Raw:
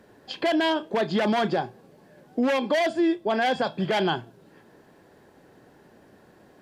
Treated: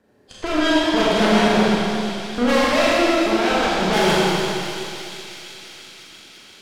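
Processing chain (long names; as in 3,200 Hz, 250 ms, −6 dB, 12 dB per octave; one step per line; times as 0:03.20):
rotating-speaker cabinet horn 0.7 Hz
harmonic generator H 7 −23 dB, 8 −14 dB, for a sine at −12.5 dBFS
on a send: delay with a high-pass on its return 341 ms, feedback 76%, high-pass 3,000 Hz, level −7 dB
on the sum: four-comb reverb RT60 2.3 s, combs from 29 ms, DRR −6.5 dB
feedback echo with a swinging delay time 125 ms, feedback 69%, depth 124 cents, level −10.5 dB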